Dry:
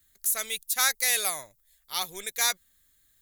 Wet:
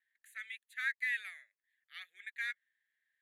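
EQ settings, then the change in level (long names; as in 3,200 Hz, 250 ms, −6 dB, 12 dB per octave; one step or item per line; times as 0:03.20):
four-pole ladder band-pass 1,900 Hz, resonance 75%
phaser with its sweep stopped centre 2,300 Hz, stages 4
−1.0 dB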